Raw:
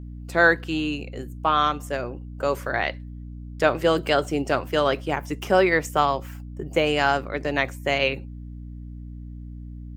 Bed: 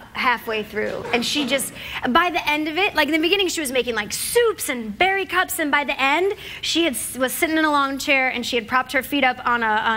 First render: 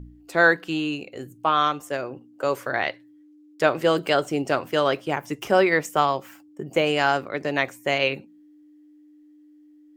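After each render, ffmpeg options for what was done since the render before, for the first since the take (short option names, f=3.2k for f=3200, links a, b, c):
-af "bandreject=f=60:t=h:w=4,bandreject=f=120:t=h:w=4,bandreject=f=180:t=h:w=4,bandreject=f=240:t=h:w=4"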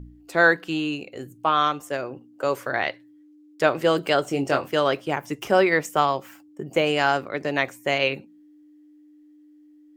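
-filter_complex "[0:a]asettb=1/sr,asplit=3[a][b][c];[a]atrim=end=4.254[d];[b]atrim=start=4.25:end=4.68,asetpts=PTS-STARTPTS,afade=t=in:d=0.004:c=qsin,afade=t=out:st=0.426:d=0.004:c=qsin,asplit=2[e][f];[f]adelay=22,volume=-6dB[g];[e][g]amix=inputs=2:normalize=0,atrim=end_sample=18963[h];[c]atrim=start=4.676[i];[d][h]acrossfade=d=0.004:c1=hsin:c2=qsin[j];[j][i]acrossfade=d=0.004:c1=qsin:c2=hsin"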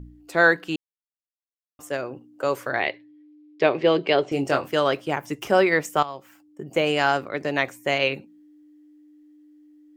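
-filter_complex "[0:a]asettb=1/sr,asplit=3[a][b][c];[a]atrim=end=2.804[d];[b]atrim=start=2.8:end=4.32,asetpts=PTS-STARTPTS,afade=t=in:d=0.004:c=qsin,afade=t=out:st=1.516:d=0.004:c=qsin,highpass=120,equalizer=f=400:t=q:w=4:g=7,equalizer=f=1.4k:t=q:w=4:g=-8,equalizer=f=2.3k:t=q:w=4:g=5,lowpass=f=4.6k:w=0.5412,lowpass=f=4.6k:w=1.3066[e];[c]atrim=start=4.316[f];[d][e]acrossfade=d=0.004:c1=hsin:c2=qsin[g];[g][f]acrossfade=d=0.004:c1=qsin:c2=hsin,asplit=4[h][i][j][k];[h]atrim=end=0.76,asetpts=PTS-STARTPTS,afade=t=out:st=0.756:d=0.004:c=hsin[l];[i]atrim=start=0.76:end=1.79,asetpts=PTS-STARTPTS,volume=0[m];[j]atrim=start=1.79:end=6.03,asetpts=PTS-STARTPTS,afade=t=in:d=0.004:c=hsin,afade=t=out:st=4.236:d=0.004:c=hsin:silence=0.188365[n];[k]atrim=start=6.03,asetpts=PTS-STARTPTS,afade=t=in:d=0.86:silence=0.188365[o];[l][m][n][o]concat=n=4:v=0:a=1"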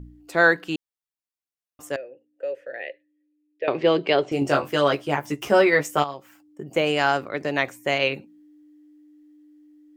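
-filter_complex "[0:a]asettb=1/sr,asplit=3[a][b][c];[a]atrim=end=1.964[d];[b]atrim=start=1.96:end=3.68,asetpts=PTS-STARTPTS,afade=t=in:d=0.004:c=qsin,afade=t=out:st=1.716:d=0.004:c=qsin,asplit=3[e][f][g];[e]bandpass=f=530:t=q:w=8,volume=0dB[h];[f]bandpass=f=1.84k:t=q:w=8,volume=-6dB[i];[g]bandpass=f=2.48k:t=q:w=8,volume=-9dB[j];[h][i][j]amix=inputs=3:normalize=0[k];[c]atrim=start=3.676[l];[d][k]acrossfade=d=0.004:c1=hsin:c2=qsin[m];[m][l]acrossfade=d=0.004:c1=qsin:c2=hsin,asettb=1/sr,asplit=3[n][o][p];[n]atrim=end=4.404[q];[o]atrim=start=4.4:end=6.14,asetpts=PTS-STARTPTS,afade=t=in:d=0.004:c=qsin,afade=t=out:st=1.736:d=0.004:c=qsin,asplit=2[r][s];[s]adelay=14,volume=-4dB[t];[r][t]amix=inputs=2:normalize=0,atrim=end_sample=76734[u];[p]atrim=start=6.136[v];[q][u]acrossfade=d=0.004:c1=hsin:c2=qsin[w];[w][v]acrossfade=d=0.004:c1=qsin:c2=hsin"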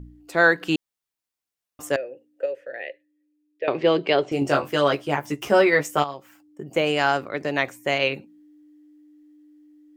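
-filter_complex "[0:a]asettb=1/sr,asplit=3[a][b][c];[a]atrim=end=0.614[d];[b]atrim=start=0.61:end=2.46,asetpts=PTS-STARTPTS,afade=t=in:d=0.004:c=qsin,afade=t=out:st=1.846:d=0.004:c=qsin,acontrast=36[e];[c]atrim=start=2.456[f];[d][e]acrossfade=d=0.004:c1=hsin:c2=qsin[g];[g][f]acrossfade=d=0.004:c1=qsin:c2=hsin"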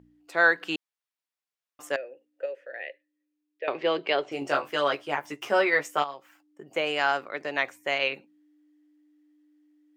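-af "highpass=f=960:p=1,highshelf=f=4.9k:g=-10.5"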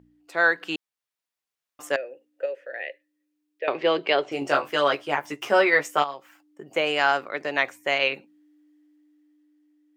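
-af "dynaudnorm=f=200:g=11:m=4dB"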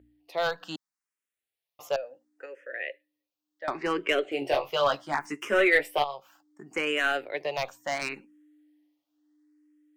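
-filter_complex "[0:a]aeval=exprs='clip(val(0),-1,0.178)':c=same,asplit=2[a][b];[b]afreqshift=0.7[c];[a][c]amix=inputs=2:normalize=1"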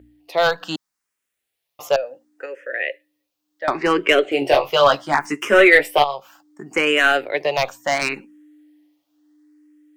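-af "volume=10.5dB,alimiter=limit=-1dB:level=0:latency=1"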